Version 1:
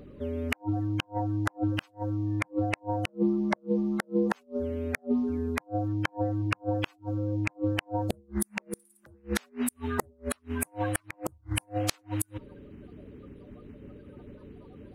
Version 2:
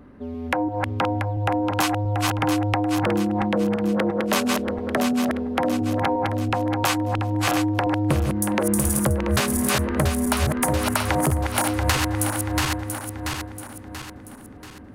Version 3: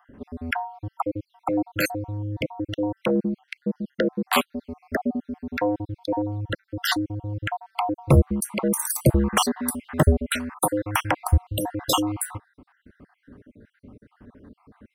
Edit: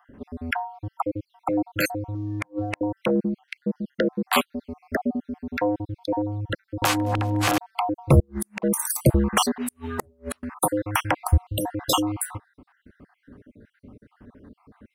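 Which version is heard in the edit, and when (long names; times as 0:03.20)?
3
0:02.15–0:02.81: punch in from 1
0:06.82–0:07.58: punch in from 2
0:08.20–0:08.62: punch in from 1
0:09.58–0:10.43: punch in from 1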